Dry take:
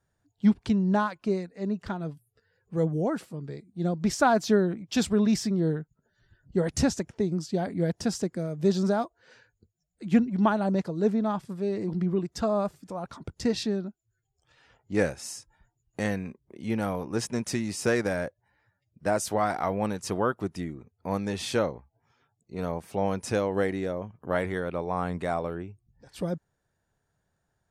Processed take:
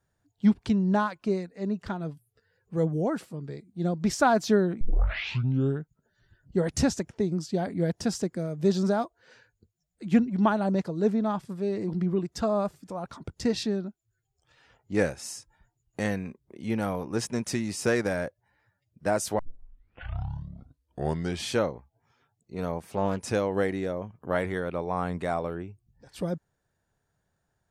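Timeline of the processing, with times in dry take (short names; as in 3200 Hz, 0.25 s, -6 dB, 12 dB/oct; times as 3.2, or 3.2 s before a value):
4.81 tape start 1.00 s
19.39 tape start 2.16 s
22.88–23.28 Doppler distortion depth 0.34 ms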